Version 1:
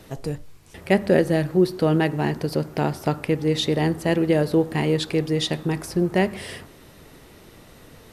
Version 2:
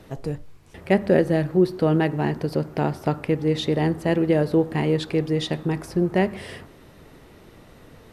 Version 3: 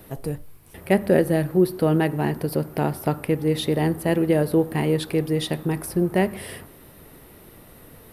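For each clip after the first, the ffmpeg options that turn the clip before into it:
ffmpeg -i in.wav -af "highshelf=frequency=3400:gain=-8.5" out.wav
ffmpeg -i in.wav -af "aexciter=amount=6:drive=6.5:freq=9300" out.wav

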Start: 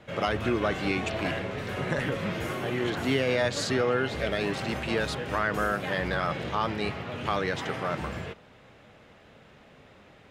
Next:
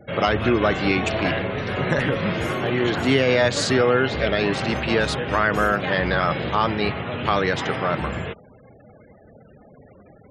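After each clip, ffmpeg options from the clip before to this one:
ffmpeg -i in.wav -af "afftfilt=real='re*gte(hypot(re,im),0.00447)':imag='im*gte(hypot(re,im),0.00447)':win_size=1024:overlap=0.75,volume=7.5dB" out.wav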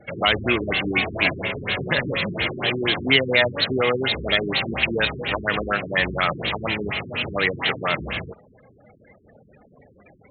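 ffmpeg -i in.wav -af "tiltshelf=frequency=900:gain=-4,aexciter=amount=2.3:drive=9.3:freq=2100,afftfilt=real='re*lt(b*sr/1024,400*pow(4400/400,0.5+0.5*sin(2*PI*4.2*pts/sr)))':imag='im*lt(b*sr/1024,400*pow(4400/400,0.5+0.5*sin(2*PI*4.2*pts/sr)))':win_size=1024:overlap=0.75,volume=-1dB" out.wav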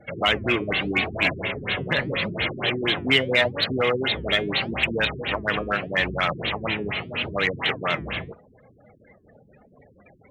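ffmpeg -i in.wav -filter_complex "[0:a]asplit=2[link_01][link_02];[link_02]asoftclip=type=hard:threshold=-12.5dB,volume=-7.5dB[link_03];[link_01][link_03]amix=inputs=2:normalize=0,flanger=delay=1.2:depth=5.7:regen=-81:speed=0.8:shape=sinusoidal" out.wav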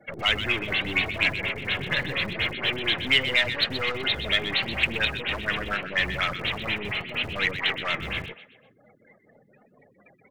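ffmpeg -i in.wav -filter_complex "[0:a]acrossover=split=110|1400[link_01][link_02][link_03];[link_01]acrusher=bits=6:mix=0:aa=0.000001[link_04];[link_02]aeval=exprs='(tanh(39.8*val(0)+0.7)-tanh(0.7))/39.8':channel_layout=same[link_05];[link_03]aecho=1:1:126|252|378|504:0.335|0.134|0.0536|0.0214[link_06];[link_04][link_05][link_06]amix=inputs=3:normalize=0" out.wav

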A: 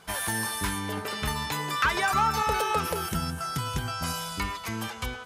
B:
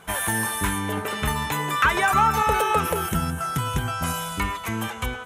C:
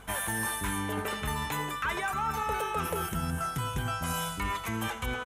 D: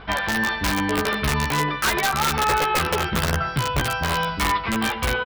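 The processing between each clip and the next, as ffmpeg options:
ffmpeg -i in.wav -af "equalizer=frequency=4800:width=2.6:gain=-13.5,volume=5.5dB" out.wav
ffmpeg -i in.wav -af "areverse,acompressor=threshold=-29dB:ratio=6,areverse,aeval=exprs='val(0)+0.00251*(sin(2*PI*50*n/s)+sin(2*PI*2*50*n/s)/2+sin(2*PI*3*50*n/s)/3+sin(2*PI*4*50*n/s)/4+sin(2*PI*5*50*n/s)/5)':channel_layout=same,aecho=1:1:84:0.141" out.wav
ffmpeg -i in.wav -filter_complex "[0:a]aresample=11025,aresample=44100,aeval=exprs='(mod(15*val(0)+1,2)-1)/15':channel_layout=same,asplit=2[link_01][link_02];[link_02]adelay=14,volume=-4dB[link_03];[link_01][link_03]amix=inputs=2:normalize=0,volume=8.5dB" out.wav

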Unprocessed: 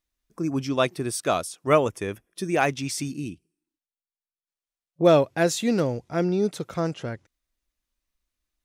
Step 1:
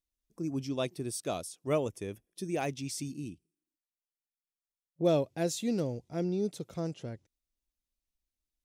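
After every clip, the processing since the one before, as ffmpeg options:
ffmpeg -i in.wav -af "equalizer=frequency=1400:width=0.83:gain=-11,volume=-7dB" out.wav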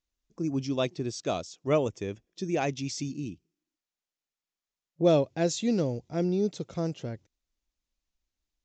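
ffmpeg -i in.wav -af "aresample=16000,aresample=44100,volume=4.5dB" out.wav

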